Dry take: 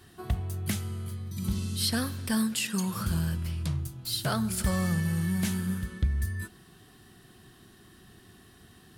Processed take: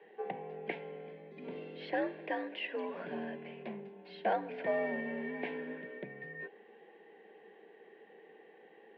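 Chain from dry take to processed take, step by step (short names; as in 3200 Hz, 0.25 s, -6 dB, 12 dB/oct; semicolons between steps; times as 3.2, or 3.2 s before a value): fixed phaser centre 500 Hz, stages 4; mistuned SSB +67 Hz 200–2300 Hz; gain +5.5 dB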